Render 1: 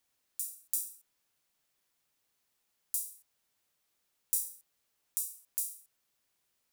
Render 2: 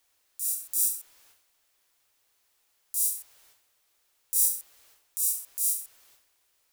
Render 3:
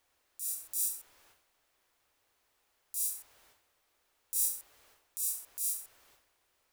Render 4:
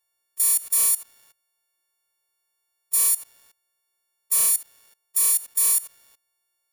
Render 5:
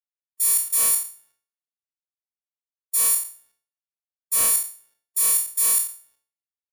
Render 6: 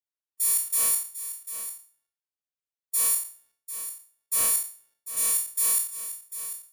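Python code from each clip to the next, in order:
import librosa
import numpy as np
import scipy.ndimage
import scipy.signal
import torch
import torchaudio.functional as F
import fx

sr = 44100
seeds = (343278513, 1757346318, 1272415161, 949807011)

y1 = fx.peak_eq(x, sr, hz=180.0, db=-14.5, octaves=1.0)
y1 = fx.transient(y1, sr, attack_db=-11, sustain_db=12)
y1 = y1 * 10.0 ** (8.0 / 20.0)
y2 = fx.high_shelf(y1, sr, hz=2700.0, db=-11.0)
y2 = y2 * 10.0 ** (3.5 / 20.0)
y3 = fx.freq_snap(y2, sr, grid_st=4)
y3 = fx.leveller(y3, sr, passes=3)
y3 = fx.level_steps(y3, sr, step_db=19)
y4 = fx.spec_trails(y3, sr, decay_s=0.58)
y4 = fx.band_widen(y4, sr, depth_pct=100)
y5 = y4 + 10.0 ** (-11.5 / 20.0) * np.pad(y4, (int(746 * sr / 1000.0), 0))[:len(y4)]
y5 = y5 * 10.0 ** (-4.0 / 20.0)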